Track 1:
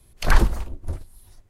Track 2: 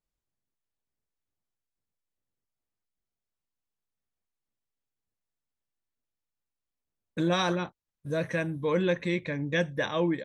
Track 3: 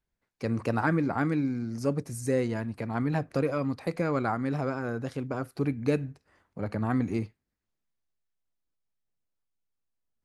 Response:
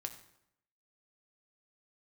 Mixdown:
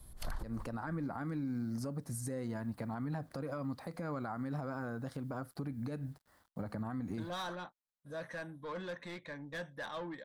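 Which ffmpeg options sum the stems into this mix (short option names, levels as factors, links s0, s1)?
-filter_complex "[0:a]acompressor=threshold=0.178:ratio=4,volume=1.19[s0];[1:a]asplit=2[s1][s2];[s2]highpass=f=720:p=1,volume=7.94,asoftclip=type=tanh:threshold=0.178[s3];[s1][s3]amix=inputs=2:normalize=0,lowpass=f=6100:p=1,volume=0.501,volume=0.178[s4];[2:a]acrusher=bits=10:mix=0:aa=0.000001,volume=0.944,asplit=2[s5][s6];[s6]apad=whole_len=66061[s7];[s0][s7]sidechaincompress=threshold=0.00708:ratio=8:attack=16:release=429[s8];[s8][s5]amix=inputs=2:normalize=0,acompressor=threshold=0.0447:ratio=6,volume=1[s9];[s4][s9]amix=inputs=2:normalize=0,equalizer=f=100:t=o:w=0.67:g=-4,equalizer=f=400:t=o:w=0.67:g=-8,equalizer=f=2500:t=o:w=0.67:g=-11,equalizer=f=6300:t=o:w=0.67:g=-6,alimiter=level_in=2.11:limit=0.0631:level=0:latency=1:release=120,volume=0.473"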